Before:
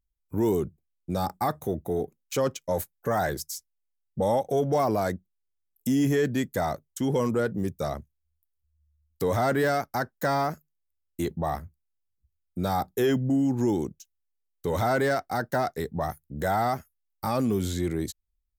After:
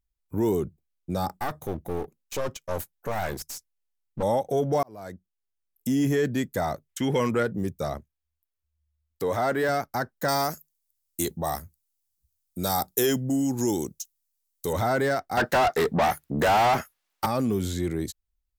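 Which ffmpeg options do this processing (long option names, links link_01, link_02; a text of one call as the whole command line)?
ffmpeg -i in.wav -filter_complex "[0:a]asettb=1/sr,asplit=3[link_01][link_02][link_03];[link_01]atrim=end=1.404[link_04];[link_02]atrim=start=1.4:end=4.23,asetpts=PTS-STARTPTS,afade=type=in:duration=0.004:curve=qsin,afade=type=out:start_time=2.826:duration=0.004:curve=qsin,aeval=exprs='clip(val(0),-1,0.0141)':channel_layout=same[link_05];[link_03]atrim=start=4.226[link_06];[link_04][link_05]acrossfade=duration=0.004:curve1=hsin:curve2=qsin[link_07];[link_07][link_06]acrossfade=duration=0.004:curve1=qsin:curve2=hsin,asettb=1/sr,asplit=3[link_08][link_09][link_10];[link_08]atrim=end=6.894[link_11];[link_09]atrim=start=6.89:end=7.43,asetpts=PTS-STARTPTS,afade=type=in:duration=0.004:curve=qsin,afade=type=out:start_time=0.536:duration=0.004:curve=qsin,equalizer=frequency=2200:width=1:gain=11.5[link_12];[link_10]atrim=start=7.426[link_13];[link_11][link_12]acrossfade=duration=0.004:curve1=hsin:curve2=qsin[link_14];[link_14][link_13]acrossfade=duration=0.004:curve1=qsin:curve2=hsin,asettb=1/sr,asplit=3[link_15][link_16][link_17];[link_15]atrim=end=7.984[link_18];[link_16]atrim=start=7.98:end=9.69,asetpts=PTS-STARTPTS,afade=type=in:duration=0.004:curve=qsin,afade=type=out:start_time=1.706:duration=0.004:curve=qsin,bass=frequency=250:gain=-7,treble=frequency=4000:gain=-3[link_19];[link_17]atrim=start=9.686[link_20];[link_18][link_19]acrossfade=duration=0.004:curve1=hsin:curve2=qsin[link_21];[link_21][link_20]acrossfade=duration=0.004:curve1=qsin:curve2=hsin,asettb=1/sr,asplit=3[link_22][link_23][link_24];[link_22]atrim=end=10.284[link_25];[link_23]atrim=start=10.28:end=14.73,asetpts=PTS-STARTPTS,afade=type=in:duration=0.004:curve=qsin,afade=type=out:start_time=4.446:duration=0.004:curve=qsin,bass=frequency=250:gain=-3,treble=frequency=4000:gain=15[link_26];[link_24]atrim=start=14.726[link_27];[link_25][link_26]acrossfade=duration=0.004:curve1=hsin:curve2=qsin[link_28];[link_28][link_27]acrossfade=duration=0.004:curve1=qsin:curve2=hsin,asettb=1/sr,asplit=3[link_29][link_30][link_31];[link_29]atrim=end=15.374[link_32];[link_30]atrim=start=15.37:end=17.26,asetpts=PTS-STARTPTS,afade=type=in:duration=0.004:curve=qsin,afade=type=out:start_time=1.886:duration=0.004:curve=qsin,asplit=2[link_33][link_34];[link_34]highpass=frequency=720:poles=1,volume=28dB,asoftclip=type=tanh:threshold=-14dB[link_35];[link_33][link_35]amix=inputs=2:normalize=0,lowpass=frequency=3100:poles=1,volume=-6dB[link_36];[link_31]atrim=start=17.256[link_37];[link_32][link_36]acrossfade=duration=0.004:curve1=hsin:curve2=qsin[link_38];[link_38][link_37]acrossfade=duration=0.004:curve1=qsin:curve2=hsin,asplit=2[link_39][link_40];[link_39]atrim=end=4.83,asetpts=PTS-STARTPTS,afade=type=out:start_time=4.826:duration=0.004:curve=hsin[link_41];[link_40]atrim=start=4.83,asetpts=PTS-STARTPTS,afade=type=in:duration=1.4:curve=qsin[link_42];[link_41][link_42]concat=n=2:v=0:a=1" out.wav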